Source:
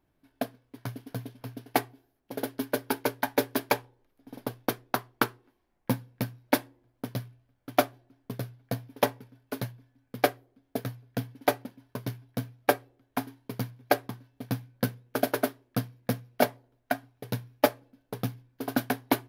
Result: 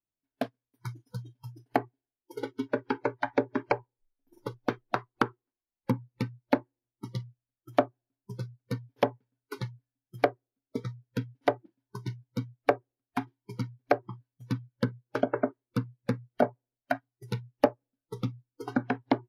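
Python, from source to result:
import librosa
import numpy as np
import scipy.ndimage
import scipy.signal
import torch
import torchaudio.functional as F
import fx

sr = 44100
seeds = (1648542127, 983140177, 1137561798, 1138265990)

y = fx.env_lowpass_down(x, sr, base_hz=920.0, full_db=-22.0)
y = fx.noise_reduce_blind(y, sr, reduce_db=26)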